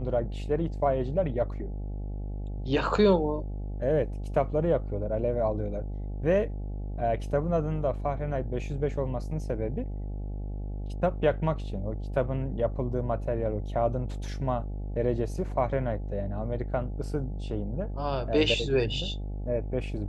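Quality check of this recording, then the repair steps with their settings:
buzz 50 Hz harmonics 17 -34 dBFS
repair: de-hum 50 Hz, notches 17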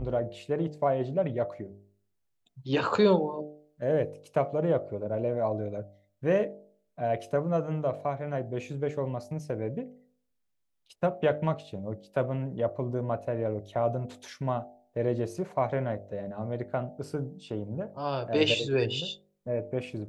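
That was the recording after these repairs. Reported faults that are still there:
nothing left

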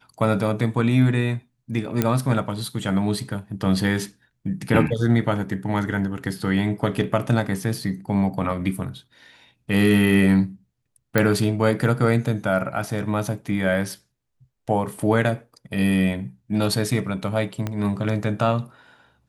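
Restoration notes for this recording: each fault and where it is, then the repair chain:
2.02 s: pop -6 dBFS
11.18 s: pop -5 dBFS
17.67 s: pop -13 dBFS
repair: de-click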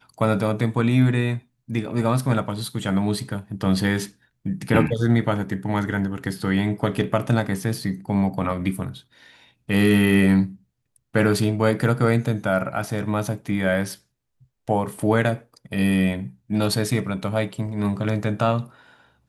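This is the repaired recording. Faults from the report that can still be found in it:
17.67 s: pop

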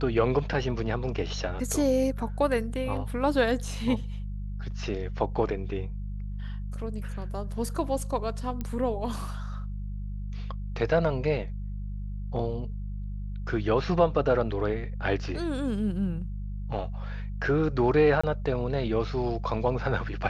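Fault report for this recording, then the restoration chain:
hum 50 Hz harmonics 4 -34 dBFS
8.61 s: pop -20 dBFS
18.21–18.23 s: dropout 25 ms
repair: de-click; de-hum 50 Hz, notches 4; interpolate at 18.21 s, 25 ms

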